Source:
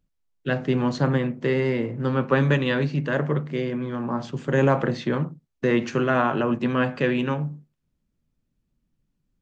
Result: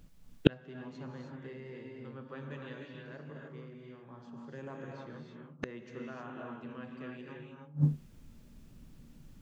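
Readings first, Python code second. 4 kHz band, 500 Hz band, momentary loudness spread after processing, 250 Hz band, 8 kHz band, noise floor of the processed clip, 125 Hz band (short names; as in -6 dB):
-12.5 dB, -18.5 dB, 26 LU, -15.0 dB, n/a, -56 dBFS, -12.5 dB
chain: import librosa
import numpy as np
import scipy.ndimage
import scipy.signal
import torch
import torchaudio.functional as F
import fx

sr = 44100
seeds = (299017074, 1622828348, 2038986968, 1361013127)

y = fx.rev_gated(x, sr, seeds[0], gate_ms=340, shape='rising', drr_db=0.0)
y = fx.gate_flip(y, sr, shuts_db=-21.0, range_db=-42)
y = F.gain(torch.from_numpy(y), 16.5).numpy()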